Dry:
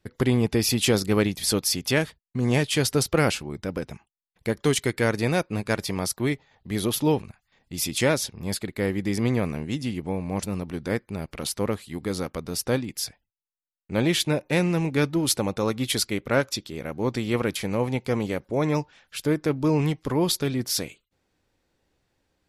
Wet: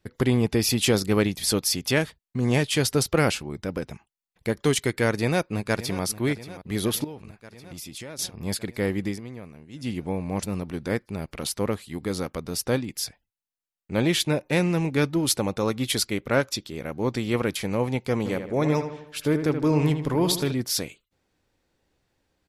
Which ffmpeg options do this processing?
-filter_complex "[0:a]asplit=2[a][b];[b]afade=t=in:st=5.17:d=0.01,afade=t=out:st=6.03:d=0.01,aecho=0:1:580|1160|1740|2320|2900|3480|4060|4640|5220:0.177828|0.12448|0.0871357|0.060995|0.0426965|0.0298875|0.0209213|0.0146449|0.0102514[c];[a][c]amix=inputs=2:normalize=0,asettb=1/sr,asplit=3[d][e][f];[d]atrim=end=7.044[g];[e]atrim=start=7.04:end=8.19,asetpts=PTS-STARTPTS,afade=t=in:d=0.004:c=qsin,afade=t=out:st=1.146:d=0.004:c=qsin,acompressor=threshold=-36dB:ratio=6:attack=3.2:release=140:knee=1:detection=peak[h];[f]atrim=start=8.186[i];[g][h]acrossfade=d=0.004:c1=hsin:c2=qsin[j];[j][i]acrossfade=d=0.004:c1=qsin:c2=hsin,asplit=3[k][l][m];[k]afade=t=out:st=18.24:d=0.02[n];[l]asplit=2[o][p];[p]adelay=78,lowpass=f=3.1k:p=1,volume=-8dB,asplit=2[q][r];[r]adelay=78,lowpass=f=3.1k:p=1,volume=0.52,asplit=2[s][t];[t]adelay=78,lowpass=f=3.1k:p=1,volume=0.52,asplit=2[u][v];[v]adelay=78,lowpass=f=3.1k:p=1,volume=0.52,asplit=2[w][x];[x]adelay=78,lowpass=f=3.1k:p=1,volume=0.52,asplit=2[y][z];[z]adelay=78,lowpass=f=3.1k:p=1,volume=0.52[aa];[o][q][s][u][w][y][aa]amix=inputs=7:normalize=0,afade=t=in:st=18.24:d=0.02,afade=t=out:st=20.51:d=0.02[ab];[m]afade=t=in:st=20.51:d=0.02[ac];[n][ab][ac]amix=inputs=3:normalize=0,asplit=3[ad][ae][af];[ad]atrim=end=9.21,asetpts=PTS-STARTPTS,afade=t=out:st=9.04:d=0.17:silence=0.16788[ag];[ae]atrim=start=9.21:end=9.73,asetpts=PTS-STARTPTS,volume=-15.5dB[ah];[af]atrim=start=9.73,asetpts=PTS-STARTPTS,afade=t=in:d=0.17:silence=0.16788[ai];[ag][ah][ai]concat=n=3:v=0:a=1"

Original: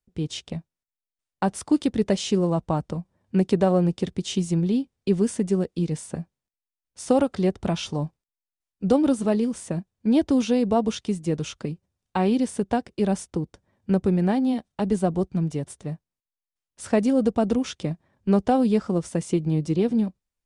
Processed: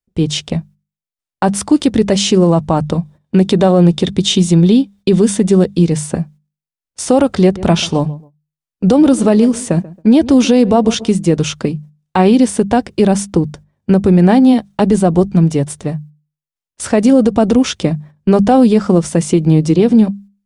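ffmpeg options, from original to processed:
-filter_complex "[0:a]asettb=1/sr,asplit=3[a][b][c];[a]atrim=end=2.854[d];[b]atrim=start=2.85:end=5.75,asetpts=PTS-STARTPTS,afade=t=in:d=0.004:c=qsin,afade=t=out:st=2.896:d=0.004:c=qsin,equalizer=f=3.6k:w=6.8:g=8.5[e];[c]atrim=start=5.746[f];[d][e]acrossfade=d=0.004:c1=hsin:c2=qsin[g];[g][f]acrossfade=d=0.004:c1=qsin:c2=hsin,asettb=1/sr,asplit=3[h][i][j];[h]atrim=end=7.434[k];[i]atrim=start=7.43:end=11.13,asetpts=PTS-STARTPTS,afade=t=in:d=0.004:c=qsin,afade=t=out:st=3.696:d=0.004:c=qsin,asplit=2[l][m];[m]adelay=137,lowpass=f=1.5k:p=1,volume=-19.5dB,asplit=2[n][o];[o]adelay=137,lowpass=f=1.5k:p=1,volume=0.28[p];[l][n][p]amix=inputs=3:normalize=0,atrim=end_sample=163170[q];[j]atrim=start=11.126[r];[k][q]acrossfade=d=0.004:c1=hsin:c2=qsin[s];[s][r]acrossfade=d=0.004:c1=qsin:c2=hsin,agate=range=-16dB:threshold=-50dB:ratio=16:detection=peak,bandreject=f=50:t=h:w=6,bandreject=f=100:t=h:w=6,bandreject=f=150:t=h:w=6,bandreject=f=200:t=h:w=6,alimiter=level_in=15.5dB:limit=-1dB:release=50:level=0:latency=1,volume=-1dB"

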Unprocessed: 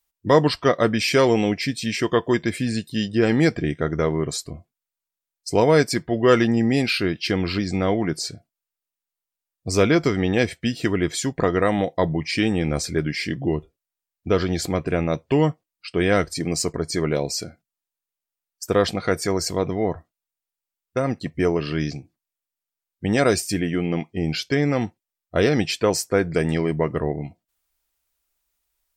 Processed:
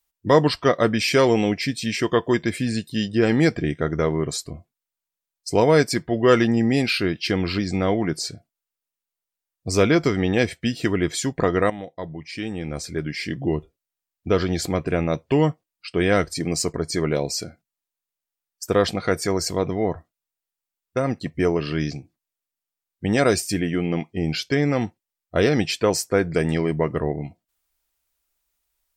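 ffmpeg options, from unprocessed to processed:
-filter_complex "[0:a]asplit=2[a][b];[a]atrim=end=11.7,asetpts=PTS-STARTPTS,afade=t=out:st=11.696:d=0.004:c=hsin:silence=0.237137[c];[b]atrim=start=11.7,asetpts=PTS-STARTPTS,afade=t=in:d=1.83:c=qua:silence=0.237137[d];[c][d]concat=n=2:v=0:a=1"

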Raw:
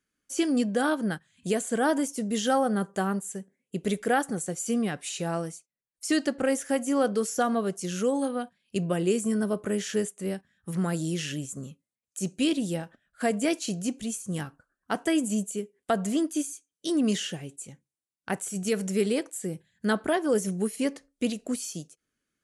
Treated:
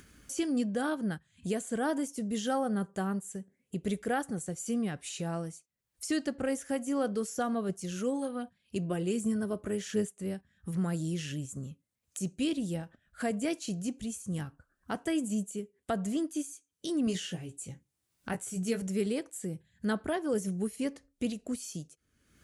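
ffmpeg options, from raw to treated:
-filter_complex "[0:a]asettb=1/sr,asplit=3[a][b][c];[a]atrim=end=7.694[d];[b]atrim=start=7.69:end=10.16,asetpts=PTS-STARTPTS,afade=t=in:d=0.004:c=qsin,afade=t=out:st=2.466:d=0.004:c=qsin,aphaser=in_gain=1:out_gain=1:delay=3.6:decay=0.31:speed=1.3:type=triangular[e];[c]atrim=start=10.156[f];[d][e]acrossfade=d=0.004:c1=hsin:c2=qsin[g];[g][f]acrossfade=d=0.004:c1=qsin:c2=hsin,asettb=1/sr,asplit=3[h][i][j];[h]atrim=end=17.054[k];[i]atrim=start=17.05:end=18.82,asetpts=PTS-STARTPTS,afade=t=in:d=0.004:c=qsin,afade=t=out:st=1.766:d=0.004:c=qsin,asplit=2[l][m];[m]adelay=17,volume=-5dB[n];[l][n]amix=inputs=2:normalize=0,atrim=end_sample=78057[o];[j]atrim=start=18.816[p];[k][o]acrossfade=d=0.004:c1=hsin:c2=qsin[q];[q][p]acrossfade=d=0.004:c1=qsin:c2=hsin,equalizer=f=66:t=o:w=2:g=14.5,acompressor=mode=upward:threshold=-27dB:ratio=2.5,volume=-7.5dB"

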